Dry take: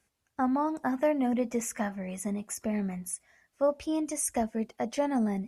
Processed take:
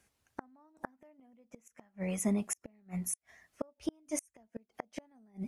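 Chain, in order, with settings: flipped gate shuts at -24 dBFS, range -37 dB; gain +2.5 dB

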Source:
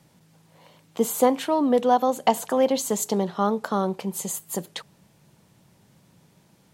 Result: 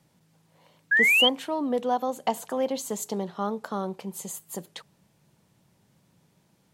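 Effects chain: painted sound rise, 0.91–1.29, 1600–3300 Hz -13 dBFS; gain -6.5 dB

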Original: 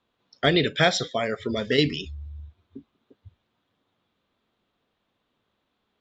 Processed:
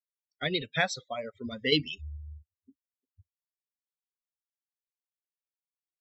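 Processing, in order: per-bin expansion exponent 2; Doppler pass-by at 2.65, 14 m/s, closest 15 m; LFO bell 0.83 Hz 530–3100 Hz +7 dB; gain -1 dB

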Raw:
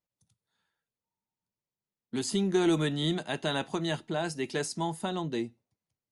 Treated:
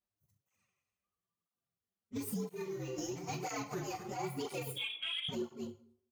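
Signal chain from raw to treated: inharmonic rescaling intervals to 121%; on a send: loudspeakers at several distances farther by 10 m -11 dB, 87 m -11 dB; 4.76–5.29 on the sum: inverted band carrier 3500 Hz; plate-style reverb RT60 0.61 s, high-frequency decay 0.75×, DRR 5.5 dB; transient shaper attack -10 dB, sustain -6 dB; in parallel at -4 dB: soft clip -31 dBFS, distortion -9 dB; 2.49–2.99 on the sum: resonator 64 Hz, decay 0.52 s, harmonics all, mix 90%; compressor, threshold -35 dBFS, peak gain reduction 10.5 dB; tape flanging out of phase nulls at 1 Hz, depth 8 ms; gain +1.5 dB

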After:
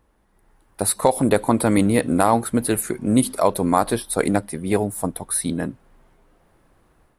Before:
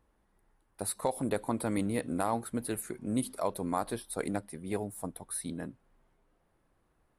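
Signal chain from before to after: AGC gain up to 6 dB; gain +8 dB

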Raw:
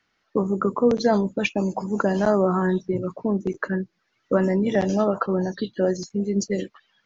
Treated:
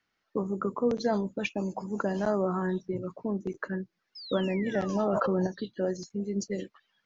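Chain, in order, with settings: 4.15–5.36 painted sound fall 430–5300 Hz -36 dBFS; 4.95–5.47 fast leveller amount 100%; gain -8 dB

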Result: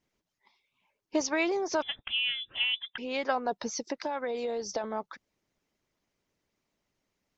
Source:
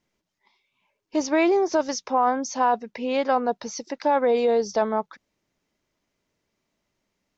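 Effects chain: harmonic-percussive split harmonic -10 dB; 1.82–2.98 inverted band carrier 3700 Hz; 3.66–4.84 compressor, threshold -29 dBFS, peak gain reduction 6.5 dB

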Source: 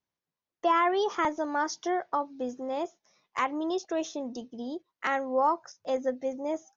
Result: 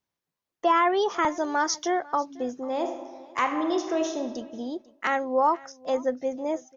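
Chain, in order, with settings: 1.28–2 high shelf 3500 Hz +8.5 dB; 2.62–4.21 reverb throw, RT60 1.4 s, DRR 5 dB; echo 0.495 s -22 dB; gain +3 dB

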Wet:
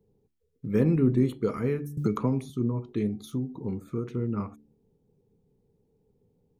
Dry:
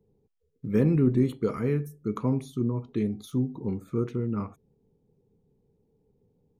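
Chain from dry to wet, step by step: 3.2–4.15 compressor, threshold -26 dBFS, peak gain reduction 5 dB; de-hum 72.97 Hz, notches 5; 1.97–2.5 three-band squash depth 100%

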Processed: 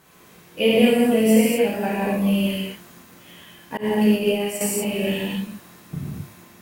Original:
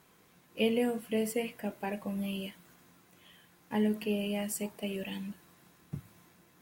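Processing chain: non-linear reverb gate 0.28 s flat, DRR -7.5 dB; 3.77–4.61 expander -21 dBFS; gain +6 dB

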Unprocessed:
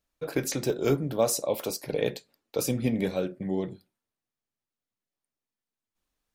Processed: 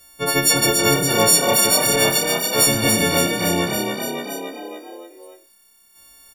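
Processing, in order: frequency quantiser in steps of 4 st; harmonic-percussive split percussive -5 dB; frequency-shifting echo 0.283 s, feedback 52%, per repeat +33 Hz, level -9 dB; spectral compressor 2:1; gain +3.5 dB

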